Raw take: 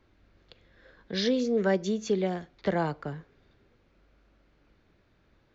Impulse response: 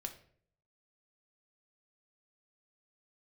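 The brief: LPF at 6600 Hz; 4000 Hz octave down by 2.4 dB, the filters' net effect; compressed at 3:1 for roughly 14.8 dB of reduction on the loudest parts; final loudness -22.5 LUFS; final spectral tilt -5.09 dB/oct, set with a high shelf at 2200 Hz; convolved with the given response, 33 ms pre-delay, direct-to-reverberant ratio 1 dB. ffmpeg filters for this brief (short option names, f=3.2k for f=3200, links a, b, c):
-filter_complex "[0:a]lowpass=6.6k,highshelf=f=2.2k:g=3,equalizer=f=4k:t=o:g=-5,acompressor=threshold=-42dB:ratio=3,asplit=2[a][b];[1:a]atrim=start_sample=2205,adelay=33[c];[b][c]afir=irnorm=-1:irlink=0,volume=1.5dB[d];[a][d]amix=inputs=2:normalize=0,volume=17dB"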